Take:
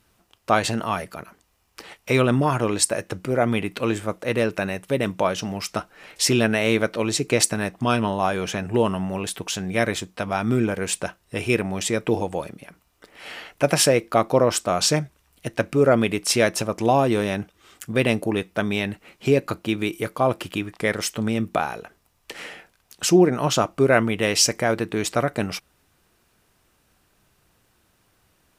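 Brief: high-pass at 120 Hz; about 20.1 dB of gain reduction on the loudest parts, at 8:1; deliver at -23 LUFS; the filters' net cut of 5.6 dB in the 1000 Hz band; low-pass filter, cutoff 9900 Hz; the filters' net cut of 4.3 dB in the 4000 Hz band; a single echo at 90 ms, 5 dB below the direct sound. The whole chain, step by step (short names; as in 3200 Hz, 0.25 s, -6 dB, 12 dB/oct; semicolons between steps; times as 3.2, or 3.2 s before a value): HPF 120 Hz; LPF 9900 Hz; bell 1000 Hz -8 dB; bell 4000 Hz -5.5 dB; compressor 8:1, threshold -33 dBFS; echo 90 ms -5 dB; gain +14 dB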